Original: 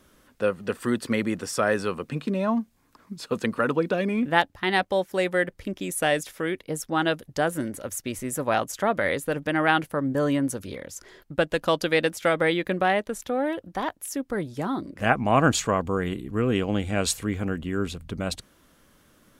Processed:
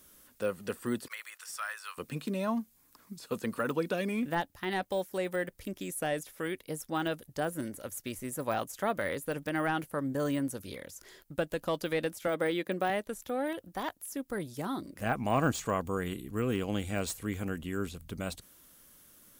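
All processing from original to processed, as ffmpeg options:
ffmpeg -i in.wav -filter_complex "[0:a]asettb=1/sr,asplit=3[link_01][link_02][link_03];[link_01]atrim=end=1.084[link_04];[link_02]atrim=start=1.08:end=1.98,asetpts=PTS-STARTPTS,afade=type=in:duration=0.004:curve=qsin,afade=type=out:start_time=0.896:duration=0.004:curve=qsin,highpass=frequency=1100:width=0.5412,highpass=frequency=1100:width=1.3066,agate=range=-33dB:threshold=-48dB:ratio=3:release=100:detection=peak[link_05];[link_03]atrim=start=1.976[link_06];[link_04][link_05]acrossfade=duration=0.004:curve1=hsin:curve2=qsin[link_07];[link_07][link_06]acrossfade=duration=0.004:curve1=qsin:curve2=hsin,asettb=1/sr,asplit=3[link_08][link_09][link_10];[link_08]atrim=end=12.274[link_11];[link_09]atrim=start=12.27:end=12.9,asetpts=PTS-STARTPTS,afade=type=in:duration=0.004:curve=qsin,afade=type=out:start_time=0.626:duration=0.004:curve=qsin,highpass=200,tiltshelf=frequency=710:gain=3[link_12];[link_10]atrim=start=12.896[link_13];[link_11][link_12]acrossfade=duration=0.004:curve1=hsin:curve2=qsin[link_14];[link_14][link_13]acrossfade=duration=0.004:curve1=qsin:curve2=hsin,aemphasis=mode=production:type=75fm,deesser=0.8,volume=-6.5dB" out.wav

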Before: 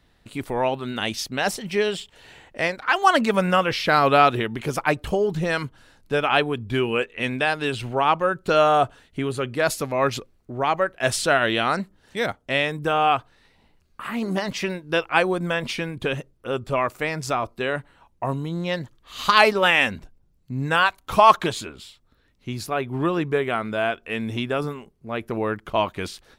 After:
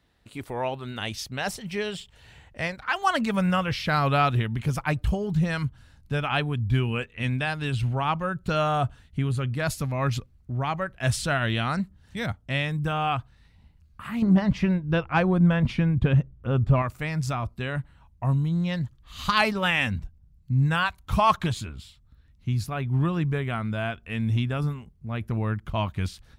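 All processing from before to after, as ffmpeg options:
ffmpeg -i in.wav -filter_complex "[0:a]asettb=1/sr,asplit=3[link_01][link_02][link_03];[link_01]atrim=end=14.224[link_04];[link_02]atrim=start=14.22:end=16.82,asetpts=PTS-STARTPTS,afade=type=in:duration=0.004:curve=qsin,afade=type=out:start_time=2.596:duration=0.004:curve=qsin,lowpass=frequency=1100:poles=1,acontrast=70[link_05];[link_03]atrim=start=16.816[link_06];[link_04][link_05]acrossfade=duration=0.004:curve1=hsin:curve2=qsin[link_07];[link_07][link_06]acrossfade=duration=0.004:curve1=qsin:curve2=hsin,highpass=44,asubboost=boost=11:cutoff=120,volume=-5.5dB" out.wav

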